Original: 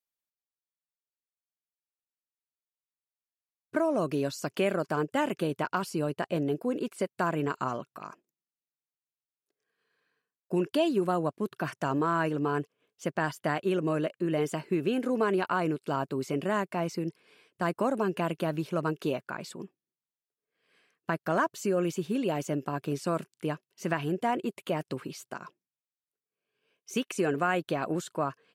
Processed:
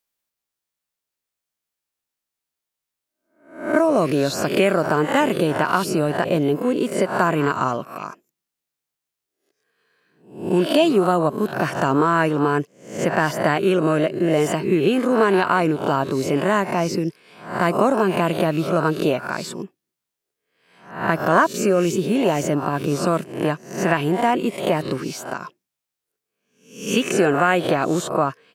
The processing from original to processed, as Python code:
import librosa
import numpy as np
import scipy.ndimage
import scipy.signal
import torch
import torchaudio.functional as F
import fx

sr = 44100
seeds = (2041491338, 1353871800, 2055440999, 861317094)

y = fx.spec_swells(x, sr, rise_s=0.5)
y = y * 10.0 ** (9.0 / 20.0)